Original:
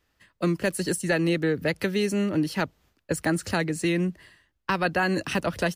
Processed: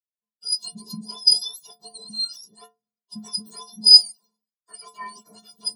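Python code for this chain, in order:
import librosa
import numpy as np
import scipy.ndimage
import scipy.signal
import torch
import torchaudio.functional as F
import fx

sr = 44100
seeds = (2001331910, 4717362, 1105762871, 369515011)

y = fx.octave_mirror(x, sr, pivot_hz=1300.0)
y = fx.high_shelf_res(y, sr, hz=3400.0, db=11.5, q=3.0)
y = fx.stiff_resonator(y, sr, f0_hz=210.0, decay_s=0.36, stiffness=0.03)
y = fx.band_widen(y, sr, depth_pct=100)
y = y * 10.0 ** (-2.0 / 20.0)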